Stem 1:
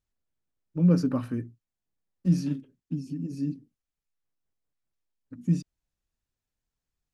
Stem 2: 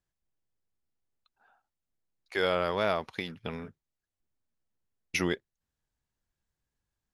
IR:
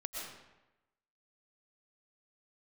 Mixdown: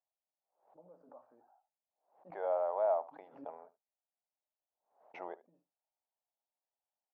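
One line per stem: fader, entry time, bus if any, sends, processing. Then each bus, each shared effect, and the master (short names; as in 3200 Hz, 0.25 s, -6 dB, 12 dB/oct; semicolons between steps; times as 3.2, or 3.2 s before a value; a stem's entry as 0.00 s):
-10.0 dB, 0.00 s, no send, echo send -17 dB, limiter -21.5 dBFS, peak gain reduction 10 dB
+1.0 dB, 0.00 s, no send, echo send -18.5 dB, dry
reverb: off
echo: echo 74 ms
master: Butterworth band-pass 730 Hz, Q 2.3; backwards sustainer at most 120 dB/s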